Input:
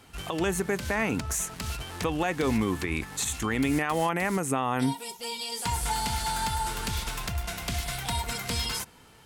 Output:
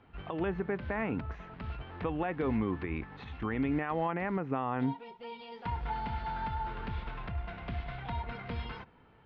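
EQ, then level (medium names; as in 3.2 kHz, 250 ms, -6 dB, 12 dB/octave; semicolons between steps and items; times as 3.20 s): Gaussian low-pass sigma 3.2 samples; distance through air 100 m; -4.5 dB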